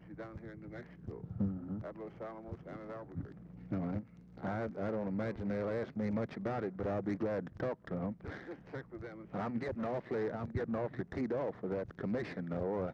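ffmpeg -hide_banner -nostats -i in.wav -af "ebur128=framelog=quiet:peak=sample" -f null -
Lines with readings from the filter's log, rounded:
Integrated loudness:
  I:         -39.4 LUFS
  Threshold: -49.5 LUFS
Loudness range:
  LRA:         5.6 LU
  Threshold: -59.4 LUFS
  LRA low:   -43.1 LUFS
  LRA high:  -37.5 LUFS
Sample peak:
  Peak:      -23.1 dBFS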